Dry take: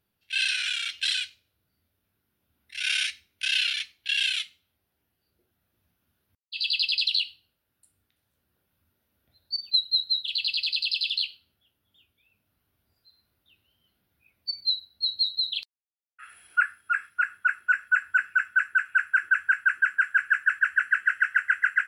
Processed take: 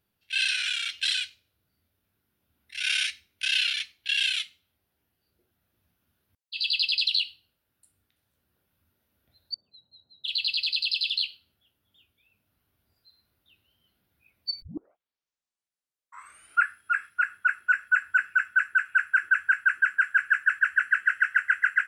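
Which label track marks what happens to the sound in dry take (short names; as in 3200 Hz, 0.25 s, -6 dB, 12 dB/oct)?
9.540000	10.240000	Chebyshev band-pass 110–770 Hz
14.620000	14.620000	tape start 2.01 s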